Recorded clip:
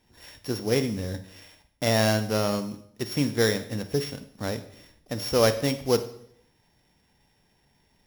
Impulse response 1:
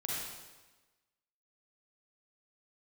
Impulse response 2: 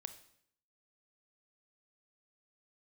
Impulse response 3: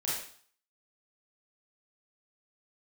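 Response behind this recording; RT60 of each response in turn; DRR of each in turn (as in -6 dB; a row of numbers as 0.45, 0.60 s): 2; 1.2, 0.65, 0.50 s; -5.5, 10.0, -7.5 dB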